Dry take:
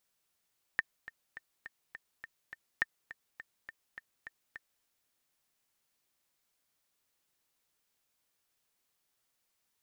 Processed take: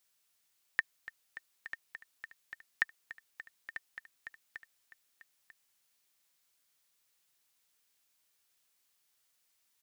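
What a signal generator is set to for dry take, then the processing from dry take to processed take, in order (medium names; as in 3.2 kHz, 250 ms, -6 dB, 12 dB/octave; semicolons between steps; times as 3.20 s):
metronome 207 bpm, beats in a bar 7, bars 2, 1.81 kHz, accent 16.5 dB -15 dBFS
tilt shelf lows -4.5 dB, about 1.2 kHz; delay 943 ms -12 dB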